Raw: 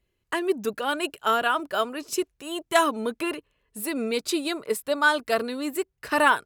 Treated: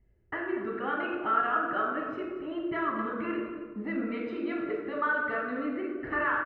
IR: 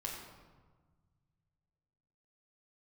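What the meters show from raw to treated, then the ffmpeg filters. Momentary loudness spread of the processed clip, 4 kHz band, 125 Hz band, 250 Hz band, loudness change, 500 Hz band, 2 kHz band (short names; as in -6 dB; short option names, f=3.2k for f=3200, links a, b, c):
8 LU, -19.5 dB, n/a, -2.5 dB, -5.5 dB, -7.5 dB, -5.0 dB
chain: -filter_complex "[0:a]acrossover=split=880[a][b];[a]acompressor=threshold=-36dB:ratio=6[c];[b]highpass=f=1.2k:w=0.5412,highpass=f=1.2k:w=1.3066[d];[c][d]amix=inputs=2:normalize=0,aecho=1:1:231:0.168,alimiter=limit=-18.5dB:level=0:latency=1:release=192,areverse,acompressor=mode=upward:threshold=-42dB:ratio=2.5,areverse,lowpass=f=1.6k:w=0.5412,lowpass=f=1.6k:w=1.3066[e];[1:a]atrim=start_sample=2205[f];[e][f]afir=irnorm=-1:irlink=0,volume=6dB"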